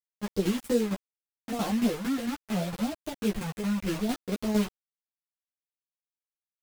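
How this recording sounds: phasing stages 4, 0.77 Hz, lowest notch 790–1800 Hz; a quantiser's noise floor 6-bit, dither none; tremolo saw down 4.4 Hz, depth 65%; a shimmering, thickened sound

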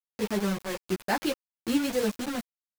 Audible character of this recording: tremolo saw down 1.2 Hz, depth 65%; a quantiser's noise floor 6-bit, dither none; a shimmering, thickened sound

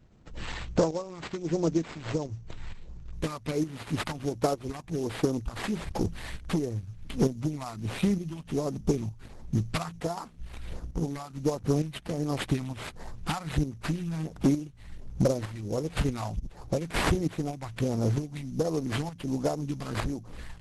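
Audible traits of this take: tremolo saw up 1.1 Hz, depth 60%; phasing stages 2, 1.4 Hz, lowest notch 400–4400 Hz; aliases and images of a low sample rate 6.1 kHz, jitter 20%; Opus

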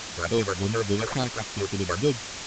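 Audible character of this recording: aliases and images of a low sample rate 2.8 kHz, jitter 0%; phasing stages 6, 3.5 Hz, lowest notch 190–2000 Hz; a quantiser's noise floor 6-bit, dither triangular; A-law

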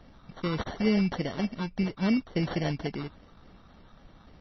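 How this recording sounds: phasing stages 12, 3.5 Hz, lowest notch 570–1500 Hz; aliases and images of a low sample rate 2.5 kHz, jitter 0%; MP3

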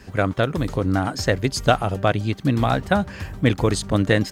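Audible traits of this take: noise floor -41 dBFS; spectral tilt -5.5 dB/octave

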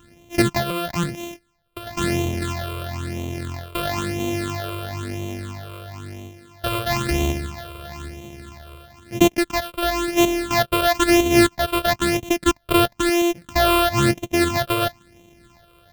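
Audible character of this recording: a buzz of ramps at a fixed pitch in blocks of 128 samples; phasing stages 8, 1 Hz, lowest notch 240–1500 Hz

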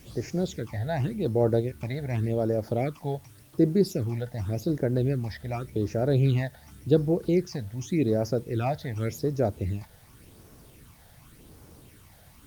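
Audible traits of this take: phasing stages 8, 0.88 Hz, lowest notch 330–3300 Hz; a quantiser's noise floor 10-bit, dither triangular; Opus

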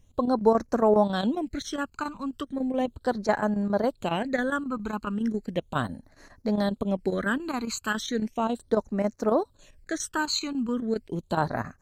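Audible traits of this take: phasing stages 12, 0.36 Hz, lowest notch 580–3300 Hz; chopped level 7.3 Hz, depth 60%, duty 85%

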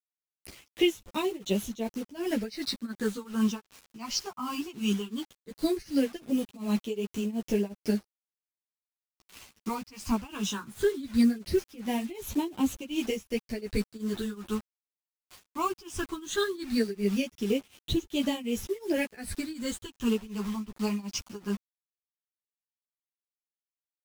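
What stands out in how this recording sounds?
phasing stages 8, 0.18 Hz, lowest notch 500–1500 Hz; a quantiser's noise floor 8-bit, dither none; tremolo triangle 2.7 Hz, depth 95%; a shimmering, thickened sound

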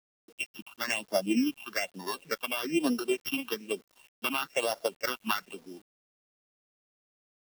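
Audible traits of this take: a buzz of ramps at a fixed pitch in blocks of 16 samples; phasing stages 6, 1.1 Hz, lowest notch 470–2400 Hz; a quantiser's noise floor 10-bit, dither none

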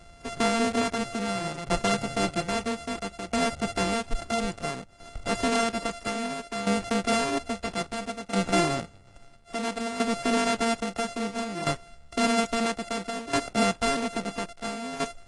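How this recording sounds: a buzz of ramps at a fixed pitch in blocks of 64 samples; tremolo saw down 0.6 Hz, depth 75%; AAC

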